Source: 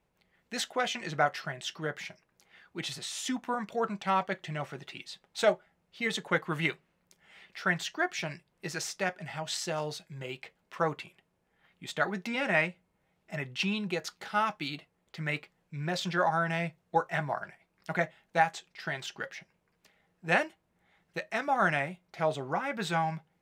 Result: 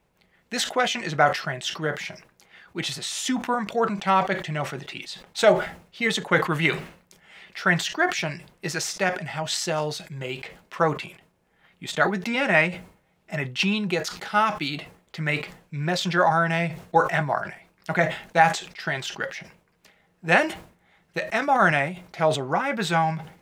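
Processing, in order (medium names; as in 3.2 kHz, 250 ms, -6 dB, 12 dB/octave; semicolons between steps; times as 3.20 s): decay stretcher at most 120 dB/s; trim +7.5 dB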